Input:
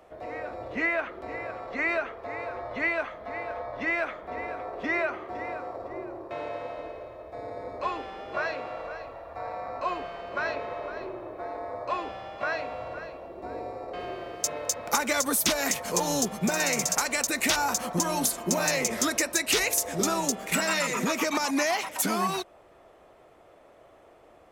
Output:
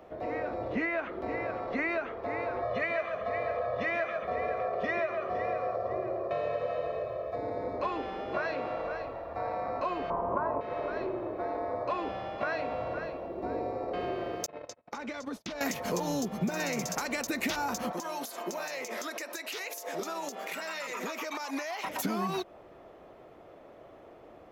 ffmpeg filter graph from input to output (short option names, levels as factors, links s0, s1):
-filter_complex "[0:a]asettb=1/sr,asplit=3[s0][s1][s2];[s0]atrim=end=2.624[s3];[s1]atrim=start=2.62:end=7.36,asetpts=PTS-STARTPTS,afade=t=in:d=0.004:c=qsin,afade=t=out:st=4.736:d=0.004:c=qsin,highpass=79,aecho=1:1:1.7:0.77,atrim=end_sample=209034,aecho=1:1:136:0.398,atrim=end_sample=209034[s4];[s2]atrim=start=7.356[s5];[s3][s4]acrossfade=d=0.004:c1=hsin:c2=qsin[s6];[s6][s5]acrossfade=d=0.004:c1=qsin:c2=hsin,asettb=1/sr,asplit=3[s7][s8][s9];[s7]atrim=end=10.104[s10];[s8]atrim=start=10.1:end=10.61,asetpts=PTS-STARTPTS,afade=t=in:d=0.004:c=qsin,afade=t=out:st=0.506:d=0.004:c=qsin,lowpass=f=1000:t=q:w=6.3,lowshelf=f=360:g=10[s11];[s9]atrim=start=10.606[s12];[s10][s11]acrossfade=d=0.004:c1=hsin:c2=qsin[s13];[s13][s12]acrossfade=d=0.004:c1=qsin:c2=hsin,asettb=1/sr,asplit=3[s14][s15][s16];[s14]atrim=end=14.464[s17];[s15]atrim=start=14.46:end=15.61,asetpts=PTS-STARTPTS,afade=t=in:d=0.004:c=qsin,afade=t=out:st=1.146:d=0.004:c=qsin,lowpass=5000,agate=range=0.00501:threshold=0.02:ratio=16:release=100:detection=peak,acompressor=threshold=0.0126:ratio=6:attack=3.2:release=140:knee=1:detection=peak[s18];[s16]atrim=start=15.606[s19];[s17][s18]acrossfade=d=0.004:c1=hsin:c2=qsin[s20];[s20][s19]acrossfade=d=0.004:c1=qsin:c2=hsin,asettb=1/sr,asplit=3[s21][s22][s23];[s21]atrim=end=17.924[s24];[s22]atrim=start=17.92:end=21.84,asetpts=PTS-STARTPTS,afade=t=in:d=0.004:c=qsin,afade=t=out:st=3.916:d=0.004:c=qsin,highpass=540,acompressor=threshold=0.0224:ratio=12:attack=3.2:release=140:knee=1:detection=peak[s25];[s23]atrim=start=21.836[s26];[s24][s25]acrossfade=d=0.004:c1=hsin:c2=qsin[s27];[s27][s26]acrossfade=d=0.004:c1=qsin:c2=hsin,equalizer=f=220:t=o:w=2.6:g=6.5,acompressor=threshold=0.0398:ratio=6,equalizer=f=8800:t=o:w=0.63:g=-12"